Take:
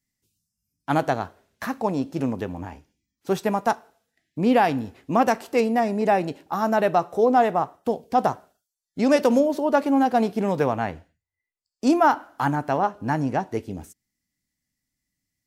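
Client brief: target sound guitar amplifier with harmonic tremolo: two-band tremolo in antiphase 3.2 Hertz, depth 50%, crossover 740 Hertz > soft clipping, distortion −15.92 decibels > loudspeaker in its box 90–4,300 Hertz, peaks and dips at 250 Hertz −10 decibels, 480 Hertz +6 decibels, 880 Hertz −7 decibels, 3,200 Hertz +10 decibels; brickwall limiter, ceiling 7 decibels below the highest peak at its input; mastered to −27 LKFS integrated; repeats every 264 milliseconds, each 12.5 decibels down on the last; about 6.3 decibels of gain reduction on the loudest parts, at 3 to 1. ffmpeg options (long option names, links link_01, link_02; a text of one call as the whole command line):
ffmpeg -i in.wav -filter_complex "[0:a]acompressor=threshold=-22dB:ratio=3,alimiter=limit=-17dB:level=0:latency=1,aecho=1:1:264|528|792:0.237|0.0569|0.0137,acrossover=split=740[link_01][link_02];[link_01]aeval=exprs='val(0)*(1-0.5/2+0.5/2*cos(2*PI*3.2*n/s))':channel_layout=same[link_03];[link_02]aeval=exprs='val(0)*(1-0.5/2-0.5/2*cos(2*PI*3.2*n/s))':channel_layout=same[link_04];[link_03][link_04]amix=inputs=2:normalize=0,asoftclip=threshold=-23dB,highpass=90,equalizer=frequency=250:width_type=q:width=4:gain=-10,equalizer=frequency=480:width_type=q:width=4:gain=6,equalizer=frequency=880:width_type=q:width=4:gain=-7,equalizer=frequency=3200:width_type=q:width=4:gain=10,lowpass=frequency=4300:width=0.5412,lowpass=frequency=4300:width=1.3066,volume=6.5dB" out.wav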